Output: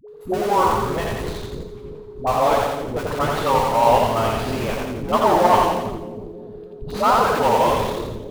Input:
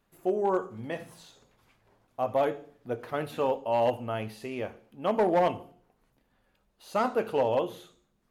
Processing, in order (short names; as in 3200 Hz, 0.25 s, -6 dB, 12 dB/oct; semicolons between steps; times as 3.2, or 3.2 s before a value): bell 1300 Hz +4 dB 0.38 oct; whine 420 Hz -37 dBFS; fifteen-band EQ 400 Hz -3 dB, 1000 Hz +10 dB, 4000 Hz +9 dB; in parallel at -3.5 dB: Schmitt trigger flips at -34.5 dBFS; on the sum: dispersion highs, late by 85 ms, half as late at 450 Hz; on a send: split-band echo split 420 Hz, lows 0.316 s, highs 86 ms, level -3 dB; on the sum: warbling echo 83 ms, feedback 34%, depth 167 cents, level -7.5 dB; gain +2 dB